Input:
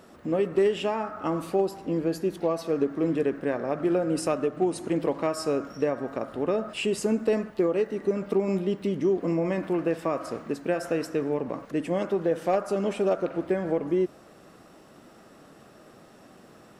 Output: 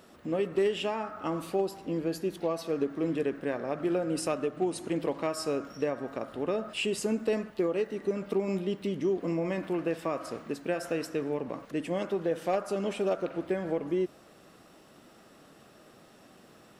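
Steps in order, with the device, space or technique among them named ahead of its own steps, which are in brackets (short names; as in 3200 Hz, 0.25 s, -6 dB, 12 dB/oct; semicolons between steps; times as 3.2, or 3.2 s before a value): presence and air boost (bell 3300 Hz +4.5 dB 1.3 oct; high shelf 9200 Hz +6 dB); gain -4.5 dB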